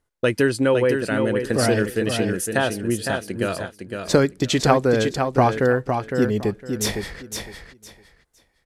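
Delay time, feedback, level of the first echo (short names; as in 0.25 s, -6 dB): 0.509 s, 21%, -6.0 dB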